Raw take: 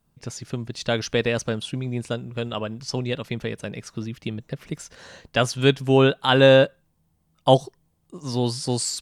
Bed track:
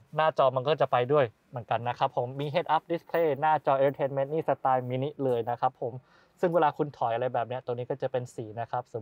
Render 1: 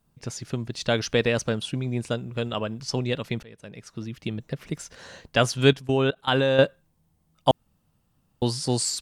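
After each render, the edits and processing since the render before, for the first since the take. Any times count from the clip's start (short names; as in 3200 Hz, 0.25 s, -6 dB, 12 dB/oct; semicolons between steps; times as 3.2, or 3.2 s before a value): 3.43–4.37 fade in, from -22.5 dB; 5.73–6.59 level quantiser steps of 21 dB; 7.51–8.42 room tone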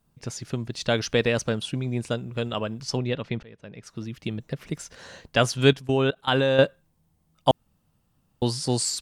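2.97–3.83 air absorption 140 m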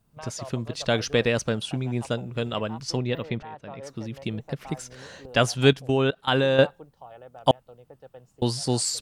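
add bed track -17 dB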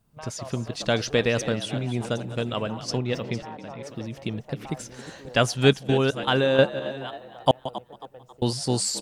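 reverse delay 0.446 s, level -14 dB; frequency-shifting echo 0.271 s, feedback 39%, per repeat +76 Hz, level -15.5 dB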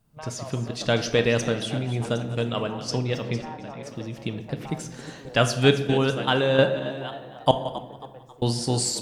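shoebox room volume 430 m³, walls mixed, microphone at 0.5 m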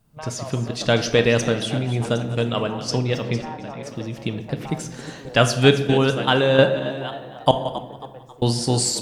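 gain +4 dB; limiter -2 dBFS, peak gain reduction 2 dB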